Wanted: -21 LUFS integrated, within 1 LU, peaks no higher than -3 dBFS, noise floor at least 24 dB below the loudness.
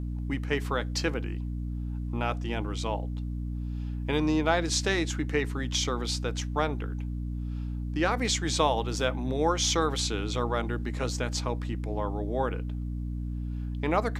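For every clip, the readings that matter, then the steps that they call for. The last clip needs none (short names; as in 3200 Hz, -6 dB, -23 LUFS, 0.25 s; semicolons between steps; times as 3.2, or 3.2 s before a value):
hum 60 Hz; harmonics up to 300 Hz; hum level -30 dBFS; loudness -30.0 LUFS; peak -9.0 dBFS; loudness target -21.0 LUFS
-> notches 60/120/180/240/300 Hz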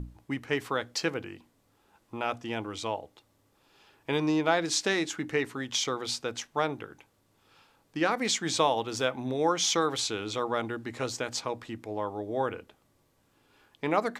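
hum none; loudness -30.0 LUFS; peak -9.0 dBFS; loudness target -21.0 LUFS
-> gain +9 dB; limiter -3 dBFS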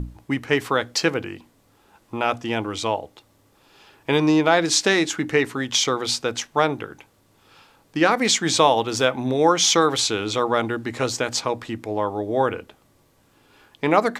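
loudness -21.5 LUFS; peak -3.0 dBFS; noise floor -60 dBFS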